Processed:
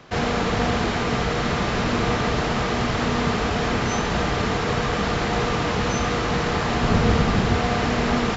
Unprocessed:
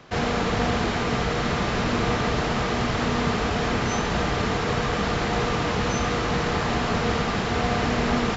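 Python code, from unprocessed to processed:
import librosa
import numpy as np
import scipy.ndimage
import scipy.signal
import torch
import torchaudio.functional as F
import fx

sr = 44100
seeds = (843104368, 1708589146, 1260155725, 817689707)

y = fx.low_shelf(x, sr, hz=240.0, db=8.5, at=(6.82, 7.56))
y = F.gain(torch.from_numpy(y), 1.5).numpy()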